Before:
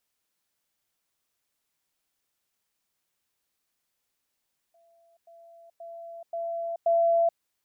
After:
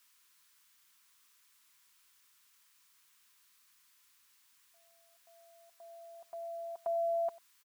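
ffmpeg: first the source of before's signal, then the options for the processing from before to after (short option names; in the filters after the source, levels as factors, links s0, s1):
-f lavfi -i "aevalsrc='pow(10,(-59+10*floor(t/0.53))/20)*sin(2*PI*674*t)*clip(min(mod(t,0.53),0.43-mod(t,0.53))/0.005,0,1)':d=2.65:s=44100"
-af "firequalizer=gain_entry='entry(440,0);entry(640,-13);entry(990,12)':delay=0.05:min_phase=1,aecho=1:1:95:0.0841"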